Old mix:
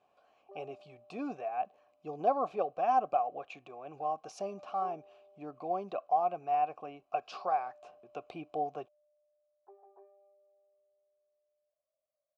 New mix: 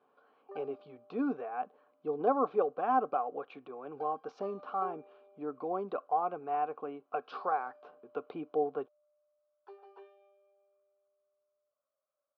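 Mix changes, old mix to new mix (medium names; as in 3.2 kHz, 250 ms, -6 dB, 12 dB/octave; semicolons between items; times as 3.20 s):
background: remove Gaussian low-pass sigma 7.9 samples; master: add cabinet simulation 140–3700 Hz, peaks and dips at 260 Hz +9 dB, 450 Hz +10 dB, 660 Hz -9 dB, 950 Hz +4 dB, 1.4 kHz +9 dB, 2.6 kHz -9 dB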